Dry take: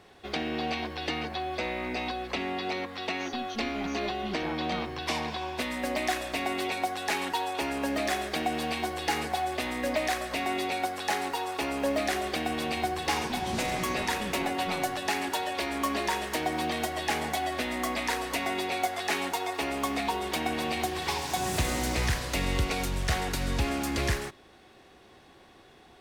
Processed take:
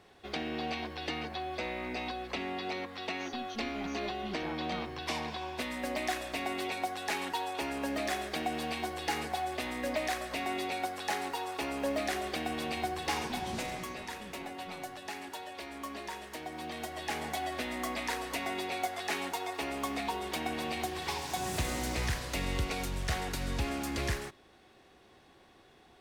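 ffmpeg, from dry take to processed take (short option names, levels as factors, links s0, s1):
-af "volume=1.33,afade=t=out:st=13.39:d=0.57:silence=0.421697,afade=t=in:st=16.51:d=0.9:silence=0.446684"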